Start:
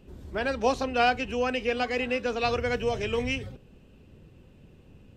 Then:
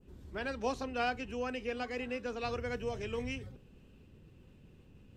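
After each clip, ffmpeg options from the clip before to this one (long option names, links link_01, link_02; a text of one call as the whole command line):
ffmpeg -i in.wav -af "equalizer=frequency=640:width=1.7:gain=-4,areverse,acompressor=mode=upward:threshold=-44dB:ratio=2.5,areverse,adynamicequalizer=threshold=0.00562:dfrequency=3200:dqfactor=0.86:tfrequency=3200:tqfactor=0.86:attack=5:release=100:ratio=0.375:range=2.5:mode=cutabove:tftype=bell,volume=-7.5dB" out.wav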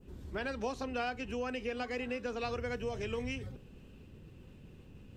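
ffmpeg -i in.wav -af "acompressor=threshold=-39dB:ratio=3,volume=4.5dB" out.wav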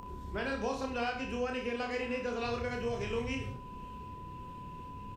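ffmpeg -i in.wav -af "aeval=exprs='val(0)+0.00178*sin(2*PI*1000*n/s)':channel_layout=same,acompressor=mode=upward:threshold=-42dB:ratio=2.5,aecho=1:1:30|63|99.3|139.2|183.2:0.631|0.398|0.251|0.158|0.1" out.wav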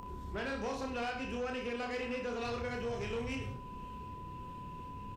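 ffmpeg -i in.wav -af "asoftclip=type=tanh:threshold=-31.5dB" out.wav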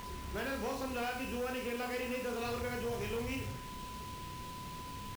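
ffmpeg -i in.wav -af "acrusher=bits=7:mix=0:aa=0.000001" out.wav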